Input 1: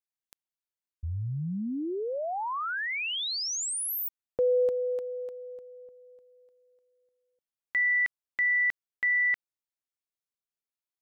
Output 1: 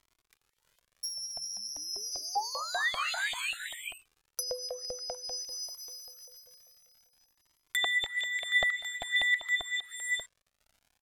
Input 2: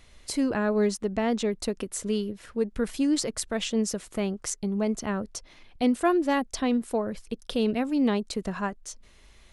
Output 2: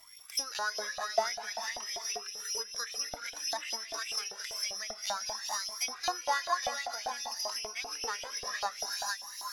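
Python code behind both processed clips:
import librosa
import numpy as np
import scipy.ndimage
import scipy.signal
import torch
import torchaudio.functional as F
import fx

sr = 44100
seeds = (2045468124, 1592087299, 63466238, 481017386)

p1 = x + fx.echo_single(x, sr, ms=458, db=-5.0, dry=0)
p2 = fx.dynamic_eq(p1, sr, hz=300.0, q=1.4, threshold_db=-33.0, ratio=3.0, max_db=-3)
p3 = (np.kron(scipy.signal.resample_poly(p2, 1, 8), np.eye(8)[0]) * 8)[:len(p2)]
p4 = fx.rev_gated(p3, sr, seeds[0], gate_ms=470, shape='rising', drr_db=5.0)
p5 = fx.filter_lfo_highpass(p4, sr, shape='saw_up', hz=5.1, low_hz=680.0, high_hz=3300.0, q=5.0)
p6 = fx.dmg_crackle(p5, sr, seeds[1], per_s=110.0, level_db=-43.0)
p7 = fx.env_lowpass_down(p6, sr, base_hz=2800.0, full_db=-13.0)
p8 = fx.low_shelf(p7, sr, hz=76.0, db=8.0)
p9 = fx.comb_cascade(p8, sr, direction='rising', hz=0.53)
y = p9 * librosa.db_to_amplitude(-4.5)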